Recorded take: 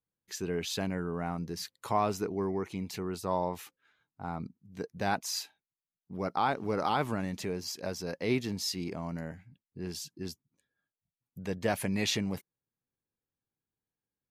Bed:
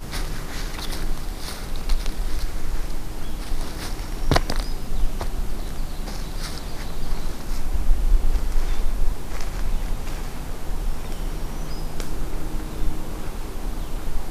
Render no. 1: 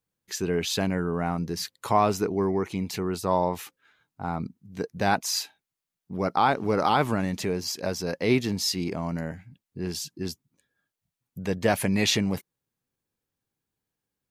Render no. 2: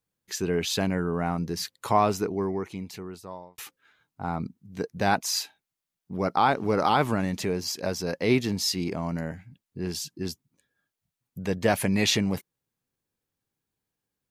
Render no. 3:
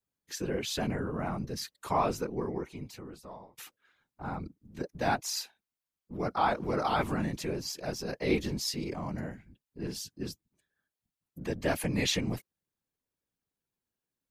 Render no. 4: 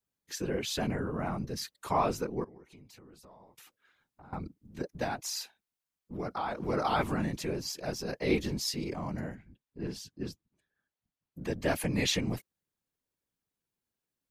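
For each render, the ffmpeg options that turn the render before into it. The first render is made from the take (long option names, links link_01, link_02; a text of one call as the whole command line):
ffmpeg -i in.wav -af "volume=7dB" out.wav
ffmpeg -i in.wav -filter_complex "[0:a]asplit=2[link_01][link_02];[link_01]atrim=end=3.58,asetpts=PTS-STARTPTS,afade=type=out:start_time=1.97:duration=1.61[link_03];[link_02]atrim=start=3.58,asetpts=PTS-STARTPTS,afade=type=in:duration=0.004:curve=hsin[link_04];[link_03][link_04]concat=n=2:v=0:a=1" out.wav
ffmpeg -i in.wav -filter_complex "[0:a]acrossover=split=200|640|6000[link_01][link_02][link_03][link_04];[link_01]volume=27dB,asoftclip=hard,volume=-27dB[link_05];[link_05][link_02][link_03][link_04]amix=inputs=4:normalize=0,afftfilt=real='hypot(re,im)*cos(2*PI*random(0))':imag='hypot(re,im)*sin(2*PI*random(1))':win_size=512:overlap=0.75" out.wav
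ffmpeg -i in.wav -filter_complex "[0:a]asettb=1/sr,asplit=3[link_01][link_02][link_03];[link_01]atrim=end=2.444[link_04];[link_02]atrim=start=2.44:end=4.33,asetpts=PTS-STARTPTS,afade=type=in:duration=0.004:curve=qsin,afade=type=out:start_time=1.886:duration=0.004:curve=qsin,acompressor=threshold=-52dB:ratio=5:attack=3.2:release=140:knee=1:detection=peak[link_05];[link_03]atrim=start=4.326[link_06];[link_04][link_05]acrossfade=duration=0.004:curve1=hsin:curve2=qsin[link_07];[link_07][link_06]acrossfade=duration=0.004:curve1=qsin:curve2=hsin,asettb=1/sr,asplit=3[link_08][link_09][link_10];[link_08]atrim=end=5.044[link_11];[link_09]atrim=start=5.04:end=6.59,asetpts=PTS-STARTPTS,afade=type=in:duration=0.004:curve=qsin,afade=type=out:start_time=1.546:duration=0.004:curve=qsin,acompressor=threshold=-32dB:ratio=3:attack=3.2:release=140:knee=1:detection=peak[link_12];[link_10]atrim=start=6.586[link_13];[link_11][link_12]acrossfade=duration=0.004:curve1=hsin:curve2=qsin[link_14];[link_14][link_13]acrossfade=duration=0.004:curve1=qsin:curve2=hsin,asettb=1/sr,asplit=3[link_15][link_16][link_17];[link_15]atrim=end=9.354[link_18];[link_16]atrim=start=9.35:end=11.39,asetpts=PTS-STARTPTS,afade=type=in:duration=0.004:curve=qsin,afade=type=out:start_time=2.036:duration=0.004:curve=qsin,highshelf=frequency=5500:gain=-10.5[link_19];[link_17]atrim=start=11.386[link_20];[link_18][link_19]acrossfade=duration=0.004:curve1=hsin:curve2=qsin[link_21];[link_21][link_20]acrossfade=duration=0.004:curve1=qsin:curve2=hsin" out.wav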